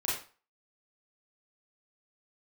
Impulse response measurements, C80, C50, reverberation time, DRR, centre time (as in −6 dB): 8.0 dB, 2.0 dB, 0.35 s, −7.5 dB, 48 ms